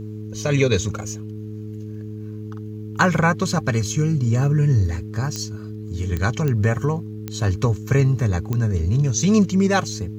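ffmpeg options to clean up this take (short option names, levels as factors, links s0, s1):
-af "adeclick=t=4,bandreject=f=106.9:t=h:w=4,bandreject=f=213.8:t=h:w=4,bandreject=f=320.7:t=h:w=4,bandreject=f=427.6:t=h:w=4"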